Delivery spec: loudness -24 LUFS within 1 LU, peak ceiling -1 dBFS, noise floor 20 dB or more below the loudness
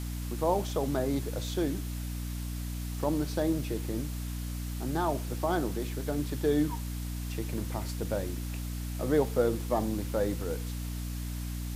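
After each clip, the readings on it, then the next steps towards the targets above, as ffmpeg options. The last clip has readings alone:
hum 60 Hz; harmonics up to 300 Hz; hum level -33 dBFS; noise floor -36 dBFS; noise floor target -53 dBFS; loudness -32.5 LUFS; peak -13.0 dBFS; loudness target -24.0 LUFS
-> -af "bandreject=f=60:t=h:w=6,bandreject=f=120:t=h:w=6,bandreject=f=180:t=h:w=6,bandreject=f=240:t=h:w=6,bandreject=f=300:t=h:w=6"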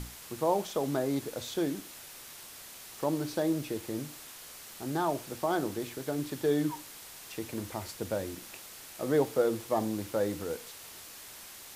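hum none; noise floor -48 dBFS; noise floor target -53 dBFS
-> -af "afftdn=nr=6:nf=-48"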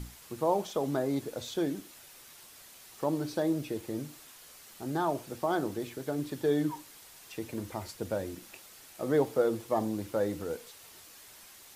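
noise floor -53 dBFS; loudness -33.0 LUFS; peak -14.0 dBFS; loudness target -24.0 LUFS
-> -af "volume=9dB"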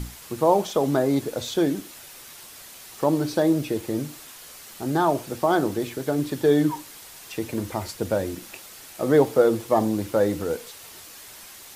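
loudness -24.0 LUFS; peak -5.0 dBFS; noise floor -44 dBFS

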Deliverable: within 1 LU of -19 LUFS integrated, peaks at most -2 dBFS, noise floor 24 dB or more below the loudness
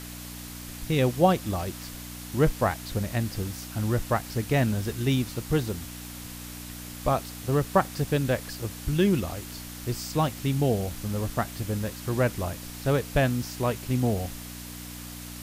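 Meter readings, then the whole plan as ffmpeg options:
hum 60 Hz; harmonics up to 300 Hz; hum level -40 dBFS; noise floor -40 dBFS; noise floor target -52 dBFS; loudness -27.5 LUFS; peak -8.5 dBFS; loudness target -19.0 LUFS
-> -af "bandreject=f=60:t=h:w=4,bandreject=f=120:t=h:w=4,bandreject=f=180:t=h:w=4,bandreject=f=240:t=h:w=4,bandreject=f=300:t=h:w=4"
-af "afftdn=nr=12:nf=-40"
-af "volume=8.5dB,alimiter=limit=-2dB:level=0:latency=1"

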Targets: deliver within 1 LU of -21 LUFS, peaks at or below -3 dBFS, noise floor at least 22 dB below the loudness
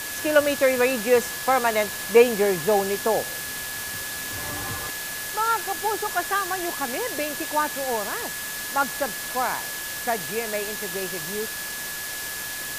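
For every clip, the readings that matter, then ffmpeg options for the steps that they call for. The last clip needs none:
steady tone 1700 Hz; tone level -35 dBFS; noise floor -32 dBFS; noise floor target -47 dBFS; loudness -24.5 LUFS; peak -4.0 dBFS; loudness target -21.0 LUFS
-> -af "bandreject=f=1.7k:w=30"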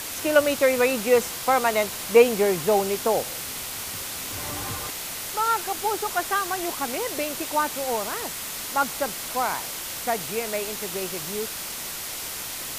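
steady tone none; noise floor -34 dBFS; noise floor target -47 dBFS
-> -af "afftdn=nr=13:nf=-34"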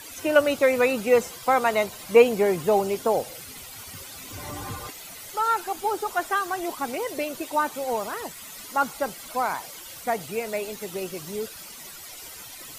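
noise floor -42 dBFS; noise floor target -47 dBFS
-> -af "afftdn=nr=6:nf=-42"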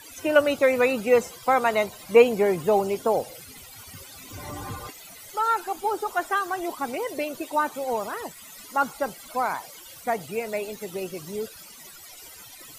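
noise floor -46 dBFS; noise floor target -47 dBFS
-> -af "afftdn=nr=6:nf=-46"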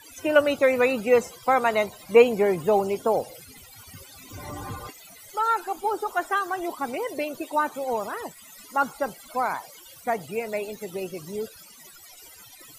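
noise floor -49 dBFS; loudness -25.0 LUFS; peak -4.5 dBFS; loudness target -21.0 LUFS
-> -af "volume=4dB,alimiter=limit=-3dB:level=0:latency=1"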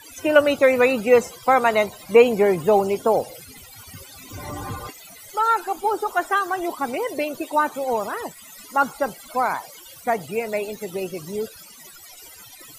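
loudness -21.5 LUFS; peak -3.0 dBFS; noise floor -45 dBFS

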